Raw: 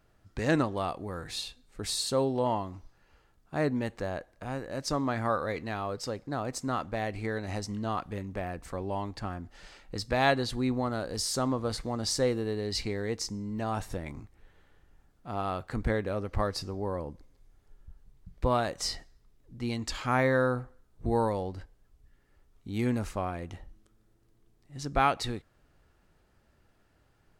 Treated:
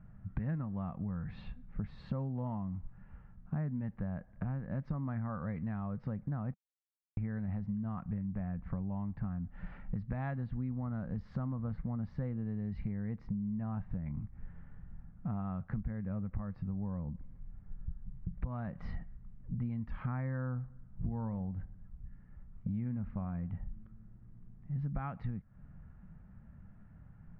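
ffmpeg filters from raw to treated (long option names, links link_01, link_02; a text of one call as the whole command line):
ffmpeg -i in.wav -filter_complex "[0:a]asettb=1/sr,asplit=3[link_01][link_02][link_03];[link_01]atrim=end=20.574[link_04];[link_02]atrim=start=20.57:end=23.52,asetpts=PTS-STARTPTS,afade=type=in:duration=0.004:curve=qsin,afade=type=out:start_time=2.946:duration=0.004:curve=qsin,asplit=2[link_05][link_06];[link_06]adelay=62,lowpass=frequency=2000:poles=1,volume=-20dB,asplit=2[link_07][link_08];[link_08]adelay=62,lowpass=frequency=2000:poles=1,volume=0.53,asplit=2[link_09][link_10];[link_10]adelay=62,lowpass=frequency=2000:poles=1,volume=0.53,asplit=2[link_11][link_12];[link_12]adelay=62,lowpass=frequency=2000:poles=1,volume=0.53[link_13];[link_05][link_07][link_09][link_11][link_13]amix=inputs=5:normalize=0,atrim=end_sample=130095[link_14];[link_03]atrim=start=23.516[link_15];[link_04][link_14]acrossfade=duration=0.004:curve1=hsin:curve2=qsin[link_16];[link_16][link_15]acrossfade=duration=0.004:curve1=qsin:curve2=hsin,asplit=3[link_17][link_18][link_19];[link_17]atrim=end=6.54,asetpts=PTS-STARTPTS,afade=type=out:start_time=6.536:duration=0.004:curve=hsin[link_20];[link_18]atrim=start=6.54:end=7.17,asetpts=PTS-STARTPTS,volume=0[link_21];[link_19]atrim=start=7.17,asetpts=PTS-STARTPTS,afade=type=in:duration=0.004:curve=hsin[link_22];[link_20][link_21][link_22]concat=n=3:v=0:a=1,lowpass=frequency=1900:width=0.5412,lowpass=frequency=1900:width=1.3066,lowshelf=frequency=260:width_type=q:width=3:gain=11,acompressor=threshold=-35dB:ratio=10,volume=1dB" out.wav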